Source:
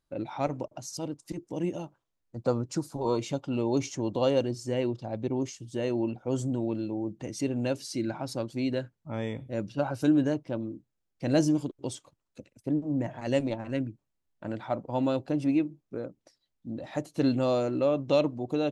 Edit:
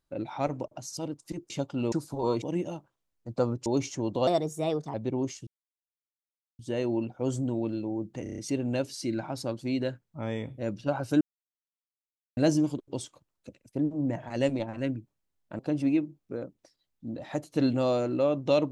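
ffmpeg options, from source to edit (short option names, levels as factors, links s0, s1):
-filter_complex "[0:a]asplit=16[s0][s1][s2][s3][s4][s5][s6][s7][s8][s9][s10][s11][s12][s13][s14][s15];[s0]atrim=end=1.502[s16];[s1]atrim=start=3.238:end=3.662[s17];[s2]atrim=start=2.738:end=3.242[s18];[s3]atrim=start=1.498:end=2.742[s19];[s4]atrim=start=3.658:end=4.274[s20];[s5]atrim=start=4.27:end=5.12,asetpts=PTS-STARTPTS,asetrate=56007,aresample=44100[s21];[s6]atrim=start=5.116:end=5.65,asetpts=PTS-STARTPTS,afade=t=out:st=0.53:d=0.004:c=hsin,apad=pad_dur=1.12[s22];[s7]atrim=start=5.65:end=7.322,asetpts=PTS-STARTPTS,afade=t=in:d=0.004:c=hsin[s23];[s8]atrim=start=7.288:end=7.322[s24];[s9]atrim=start=7.288:end=7.322[s25];[s10]atrim=start=7.288:end=7.322[s26];[s11]atrim=start=7.288:end=7.322[s27];[s12]atrim=start=7.288:end=10.12,asetpts=PTS-STARTPTS,afade=t=out:st=2.828:d=0.004:c=hsin[s28];[s13]atrim=start=10.12:end=11.28,asetpts=PTS-STARTPTS,volume=0[s29];[s14]atrim=start=11.28:end=14.502,asetpts=PTS-STARTPTS,afade=t=in:d=0.004:c=hsin[s30];[s15]atrim=start=15.208[s31];[s16][s17]acrossfade=d=0.004:c1=hsin:c2=hsin[s32];[s32][s18]acrossfade=d=0.004:c1=hsin:c2=hsin[s33];[s33][s19]acrossfade=d=0.004:c1=hsin:c2=hsin[s34];[s34][s20]acrossfade=d=0.004:c1=hsin:c2=hsin[s35];[s35][s21]acrossfade=d=0.004:c1=hsin:c2=hsin[s36];[s22][s23]concat=n=2:v=0:a=1[s37];[s36][s37]acrossfade=d=0.004:c1=hsin:c2=hsin[s38];[s38][s24]acrossfade=d=0.004:c1=hsin:c2=hsin[s39];[s39][s25]acrossfade=d=0.004:c1=hsin:c2=hsin[s40];[s40][s26]acrossfade=d=0.004:c1=hsin:c2=hsin[s41];[s41][s27]acrossfade=d=0.004:c1=hsin:c2=hsin[s42];[s28][s29][s30]concat=n=3:v=0:a=1[s43];[s42][s43]acrossfade=d=0.004:c1=hsin:c2=hsin[s44];[s44][s31]acrossfade=d=0.004:c1=hsin:c2=hsin"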